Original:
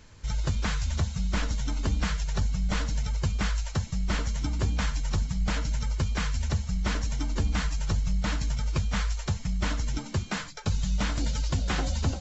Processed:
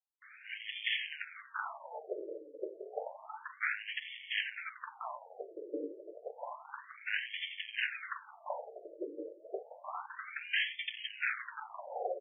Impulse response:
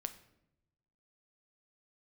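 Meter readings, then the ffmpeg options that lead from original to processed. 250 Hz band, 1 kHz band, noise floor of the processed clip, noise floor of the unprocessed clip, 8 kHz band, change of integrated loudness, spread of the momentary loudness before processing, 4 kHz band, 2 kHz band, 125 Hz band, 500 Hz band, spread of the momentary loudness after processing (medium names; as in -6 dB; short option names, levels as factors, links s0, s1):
-18.0 dB, -5.0 dB, -58 dBFS, -41 dBFS, no reading, -10.0 dB, 3 LU, -4.0 dB, 0.0 dB, under -40 dB, -1.5 dB, 12 LU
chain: -filter_complex "[0:a]lowshelf=f=270:g=5,bandreject=f=50:t=h:w=6,bandreject=f=100:t=h:w=6,bandreject=f=150:t=h:w=6,bandreject=f=200:t=h:w=6,bandreject=f=250:t=h:w=6,bandreject=f=300:t=h:w=6,crystalizer=i=3:c=0,aresample=11025,asoftclip=type=tanh:threshold=0.0447,aresample=44100,acrossover=split=150|1000[s0][s1][s2];[s2]adelay=220[s3];[s1]adelay=260[s4];[s0][s4][s3]amix=inputs=3:normalize=0,asplit=2[s5][s6];[1:a]atrim=start_sample=2205[s7];[s6][s7]afir=irnorm=-1:irlink=0,volume=1.19[s8];[s5][s8]amix=inputs=2:normalize=0,afftfilt=real='re*between(b*sr/1024,420*pow(2500/420,0.5+0.5*sin(2*PI*0.3*pts/sr))/1.41,420*pow(2500/420,0.5+0.5*sin(2*PI*0.3*pts/sr))*1.41)':imag='im*between(b*sr/1024,420*pow(2500/420,0.5+0.5*sin(2*PI*0.3*pts/sr))/1.41,420*pow(2500/420,0.5+0.5*sin(2*PI*0.3*pts/sr))*1.41)':win_size=1024:overlap=0.75,volume=1.26"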